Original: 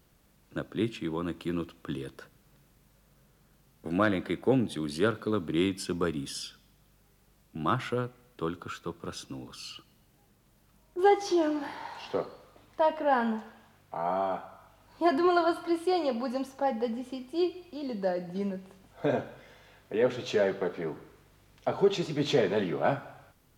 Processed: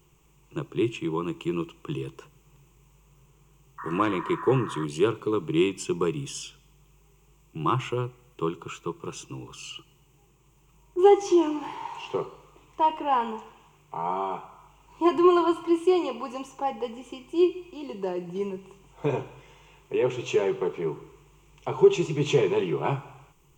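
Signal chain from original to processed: painted sound noise, 3.78–4.85 s, 940–1900 Hz -38 dBFS; rippled EQ curve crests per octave 0.71, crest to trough 15 dB

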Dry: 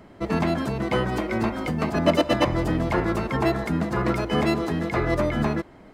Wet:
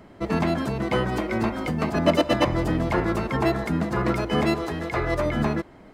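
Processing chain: 4.54–5.26 s: peaking EQ 210 Hz -9 dB 1 oct

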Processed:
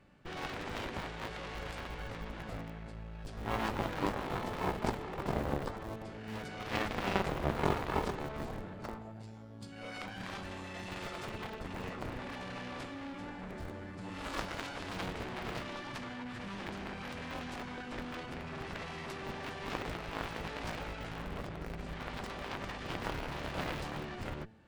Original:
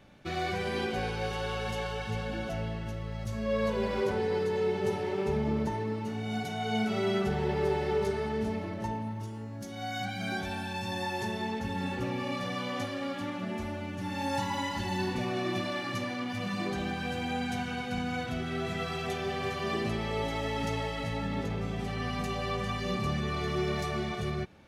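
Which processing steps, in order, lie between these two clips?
Chebyshev shaper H 3 -8 dB, 5 -44 dB, 7 -39 dB, 8 -32 dB, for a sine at -17 dBFS; de-hum 110.8 Hz, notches 8; in parallel at -4 dB: Schmitt trigger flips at -44.5 dBFS; on the sum: formant shift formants -5 st; trim +6.5 dB

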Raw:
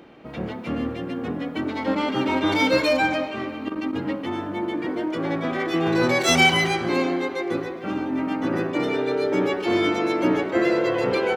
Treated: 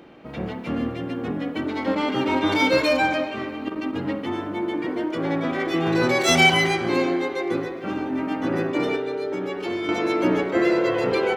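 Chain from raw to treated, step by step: 8.95–9.89 s: compression 6:1, threshold -26 dBFS, peak gain reduction 9 dB; reverberation, pre-delay 43 ms, DRR 11 dB

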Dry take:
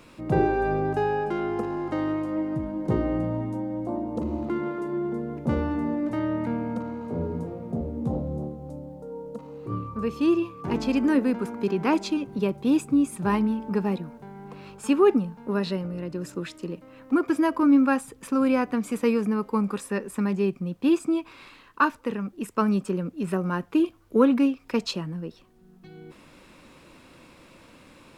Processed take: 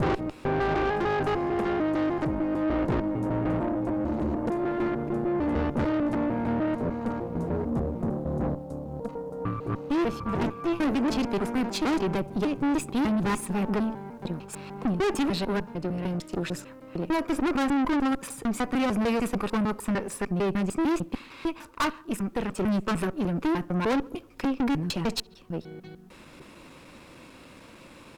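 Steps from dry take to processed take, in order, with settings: slices played last to first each 150 ms, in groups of 3; on a send: tape echo 66 ms, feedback 60%, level -24 dB, low-pass 1.5 kHz; on the sum: valve stage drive 29 dB, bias 0.7; speakerphone echo 140 ms, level -28 dB; trim +6.5 dB

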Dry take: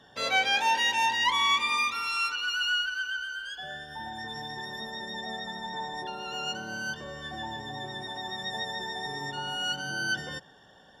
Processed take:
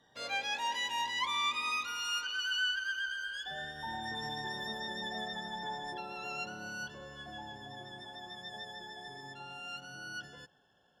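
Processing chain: Doppler pass-by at 4.21 s, 14 m/s, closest 20 m; trim -1 dB

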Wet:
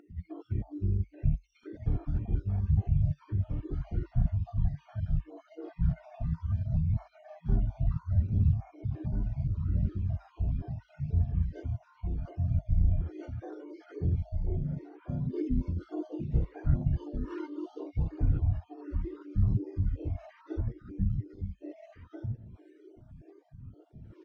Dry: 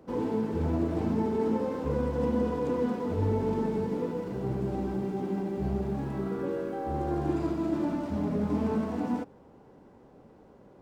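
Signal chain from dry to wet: random holes in the spectrogram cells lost 70%; delay 729 ms -4.5 dB; in parallel at -2.5 dB: compression, threshold -43 dBFS, peak gain reduction 18 dB; on the sum: dynamic bell 110 Hz, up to +5 dB, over -53 dBFS, Q 2.9; formant shift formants -5 st; phaser 1.6 Hz, delay 1.6 ms, feedback 39%; reverse; upward compressor, threshold -45 dBFS; reverse; wide varispeed 0.446×; treble shelf 4.2 kHz -7 dB; small resonant body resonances 710/1400 Hz, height 7 dB

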